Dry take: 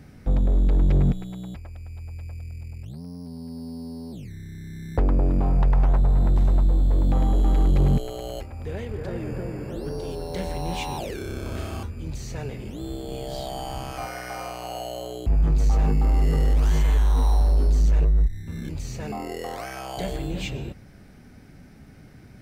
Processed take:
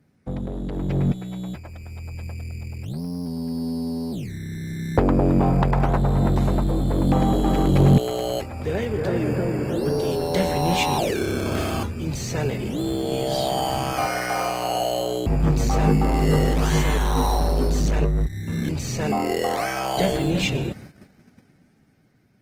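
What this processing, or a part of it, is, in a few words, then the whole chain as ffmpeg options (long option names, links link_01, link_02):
video call: -af "highpass=110,dynaudnorm=framelen=280:gausssize=11:maxgain=9.5dB,agate=range=-13dB:threshold=-40dB:ratio=16:detection=peak" -ar 48000 -c:a libopus -b:a 20k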